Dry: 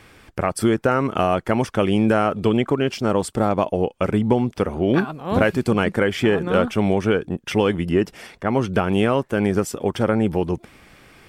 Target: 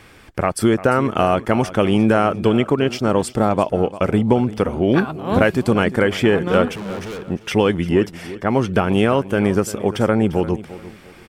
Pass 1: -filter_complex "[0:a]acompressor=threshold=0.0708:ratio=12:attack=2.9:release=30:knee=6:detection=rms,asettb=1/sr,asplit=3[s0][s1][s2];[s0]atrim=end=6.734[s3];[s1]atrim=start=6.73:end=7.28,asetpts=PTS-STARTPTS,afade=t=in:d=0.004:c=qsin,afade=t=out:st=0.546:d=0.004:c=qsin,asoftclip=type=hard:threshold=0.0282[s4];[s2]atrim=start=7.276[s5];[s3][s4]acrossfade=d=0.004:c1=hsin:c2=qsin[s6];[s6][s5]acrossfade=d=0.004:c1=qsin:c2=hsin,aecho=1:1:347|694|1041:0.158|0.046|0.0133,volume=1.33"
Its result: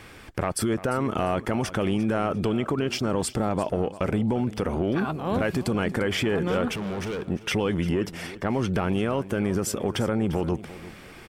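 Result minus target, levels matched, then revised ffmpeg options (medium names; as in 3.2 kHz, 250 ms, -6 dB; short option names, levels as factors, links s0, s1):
compression: peak gain reduction +13.5 dB
-filter_complex "[0:a]asettb=1/sr,asplit=3[s0][s1][s2];[s0]atrim=end=6.734[s3];[s1]atrim=start=6.73:end=7.28,asetpts=PTS-STARTPTS,afade=t=in:d=0.004:c=qsin,afade=t=out:st=0.546:d=0.004:c=qsin,asoftclip=type=hard:threshold=0.0282[s4];[s2]atrim=start=7.276[s5];[s3][s4]acrossfade=d=0.004:c1=hsin:c2=qsin[s6];[s6][s5]acrossfade=d=0.004:c1=qsin:c2=hsin,aecho=1:1:347|694|1041:0.158|0.046|0.0133,volume=1.33"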